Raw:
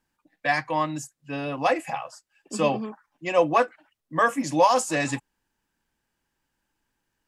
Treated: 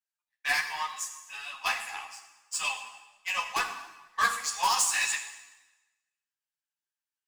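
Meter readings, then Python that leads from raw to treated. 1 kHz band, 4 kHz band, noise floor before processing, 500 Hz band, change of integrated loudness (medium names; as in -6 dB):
-7.0 dB, +4.0 dB, -80 dBFS, -24.0 dB, -5.0 dB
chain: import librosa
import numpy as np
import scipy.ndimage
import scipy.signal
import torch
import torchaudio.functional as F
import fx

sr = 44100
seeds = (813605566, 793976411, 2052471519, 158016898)

p1 = scipy.signal.sosfilt(scipy.signal.butter(6, 820.0, 'highpass', fs=sr, output='sos'), x)
p2 = 10.0 ** (-27.0 / 20.0) * np.tanh(p1 / 10.0 ** (-27.0 / 20.0))
p3 = p1 + F.gain(torch.from_numpy(p2), -9.5).numpy()
p4 = fx.tilt_shelf(p3, sr, db=-8.5, hz=1300.0)
p5 = 10.0 ** (-14.5 / 20.0) * (np.abs((p4 / 10.0 ** (-14.5 / 20.0) + 3.0) % 4.0 - 2.0) - 1.0)
p6 = fx.power_curve(p5, sr, exponent=1.4)
p7 = fx.rev_plate(p6, sr, seeds[0], rt60_s=1.1, hf_ratio=0.95, predelay_ms=0, drr_db=5.5)
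y = fx.ensemble(p7, sr)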